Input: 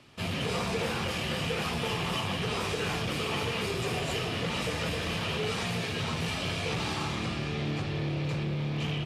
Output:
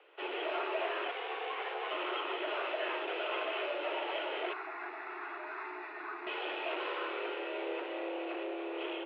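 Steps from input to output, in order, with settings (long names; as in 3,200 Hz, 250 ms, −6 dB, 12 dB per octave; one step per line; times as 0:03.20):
0:01.11–0:01.91: ring modulation 410 Hz
single-sideband voice off tune +190 Hz 180–2,800 Hz
0:04.53–0:06.27: phaser with its sweep stopped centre 1,300 Hz, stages 4
level −3 dB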